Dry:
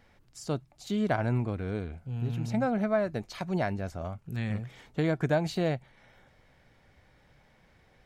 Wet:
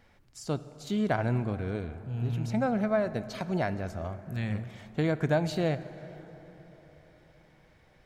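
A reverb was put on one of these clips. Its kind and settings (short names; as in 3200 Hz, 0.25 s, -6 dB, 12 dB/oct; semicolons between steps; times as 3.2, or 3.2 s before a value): plate-style reverb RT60 4.3 s, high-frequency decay 0.45×, DRR 13 dB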